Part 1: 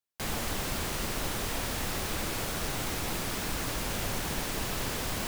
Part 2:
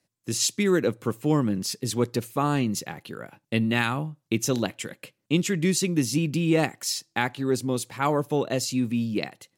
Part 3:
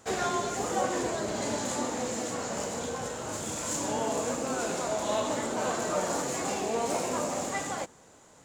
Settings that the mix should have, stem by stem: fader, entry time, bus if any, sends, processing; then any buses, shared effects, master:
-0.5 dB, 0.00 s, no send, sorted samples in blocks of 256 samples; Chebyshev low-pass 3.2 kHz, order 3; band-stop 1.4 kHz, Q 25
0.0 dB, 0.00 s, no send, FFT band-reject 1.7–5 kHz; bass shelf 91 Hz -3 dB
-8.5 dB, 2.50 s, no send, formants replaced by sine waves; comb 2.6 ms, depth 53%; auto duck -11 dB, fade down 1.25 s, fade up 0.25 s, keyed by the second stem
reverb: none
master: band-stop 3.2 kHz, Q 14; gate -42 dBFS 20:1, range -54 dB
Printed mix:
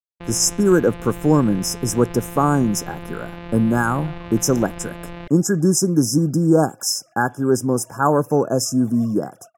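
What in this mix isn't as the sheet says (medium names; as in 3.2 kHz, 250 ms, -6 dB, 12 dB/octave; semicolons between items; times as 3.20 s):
stem 2 0.0 dB -> +7.5 dB; stem 3: entry 2.50 s -> 3.85 s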